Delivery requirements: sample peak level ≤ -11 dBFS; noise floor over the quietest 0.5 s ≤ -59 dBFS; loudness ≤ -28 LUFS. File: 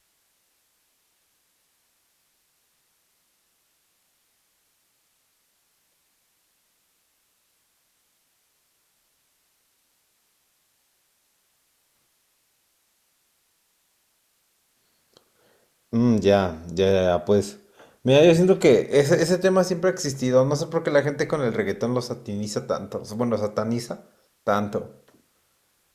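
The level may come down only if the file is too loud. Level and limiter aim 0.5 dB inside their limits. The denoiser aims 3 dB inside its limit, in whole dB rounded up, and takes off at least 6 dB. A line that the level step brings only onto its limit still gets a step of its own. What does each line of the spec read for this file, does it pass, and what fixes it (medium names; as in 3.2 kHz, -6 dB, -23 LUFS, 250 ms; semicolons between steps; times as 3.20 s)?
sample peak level -6.0 dBFS: fail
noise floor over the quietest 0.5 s -69 dBFS: pass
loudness -22.0 LUFS: fail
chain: trim -6.5 dB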